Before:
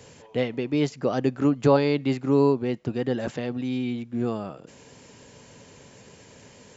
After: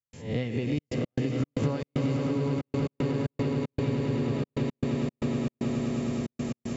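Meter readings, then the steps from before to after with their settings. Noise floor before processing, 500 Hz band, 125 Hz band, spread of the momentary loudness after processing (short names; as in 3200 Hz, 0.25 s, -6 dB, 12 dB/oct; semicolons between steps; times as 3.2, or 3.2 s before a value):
-51 dBFS, -7.0 dB, +2.0 dB, 4 LU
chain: spectral swells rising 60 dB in 0.44 s; bell 2000 Hz +4 dB 1.4 oct; notch 1500 Hz, Q 19; swelling echo 0.105 s, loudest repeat 8, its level -8 dB; step gate ".xxxxx.x.xx.xx" 115 bpm -60 dB; compressor 6:1, threshold -26 dBFS, peak gain reduction 14 dB; tone controls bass +14 dB, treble +5 dB; gain -5 dB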